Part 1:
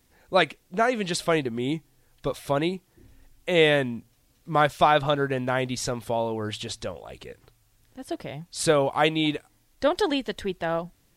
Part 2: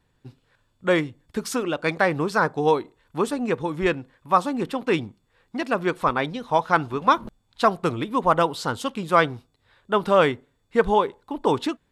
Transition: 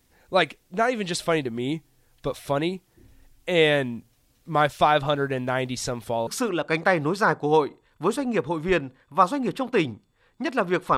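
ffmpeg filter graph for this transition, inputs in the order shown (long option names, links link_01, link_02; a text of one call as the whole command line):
ffmpeg -i cue0.wav -i cue1.wav -filter_complex "[0:a]apad=whole_dur=10.97,atrim=end=10.97,atrim=end=6.272[link_01];[1:a]atrim=start=1.408:end=6.11[link_02];[link_01][link_02]acrossfade=duration=0.004:curve1=hsin:curve2=hsin" out.wav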